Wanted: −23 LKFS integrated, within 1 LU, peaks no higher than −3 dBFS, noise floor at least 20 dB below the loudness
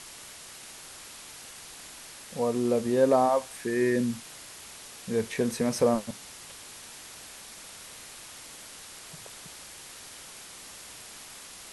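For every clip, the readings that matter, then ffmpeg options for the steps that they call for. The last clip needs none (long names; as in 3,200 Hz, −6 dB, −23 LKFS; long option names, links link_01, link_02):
background noise floor −46 dBFS; target noise floor −47 dBFS; integrated loudness −27.0 LKFS; sample peak −11.0 dBFS; target loudness −23.0 LKFS
→ -af "afftdn=noise_reduction=6:noise_floor=-46"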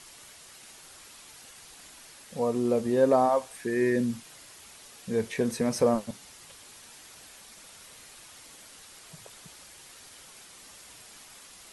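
background noise floor −51 dBFS; integrated loudness −27.0 LKFS; sample peak −11.0 dBFS; target loudness −23.0 LKFS
→ -af "volume=4dB"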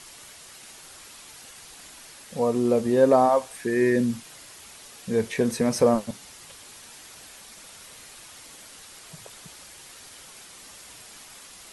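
integrated loudness −23.0 LKFS; sample peak −7.0 dBFS; background noise floor −47 dBFS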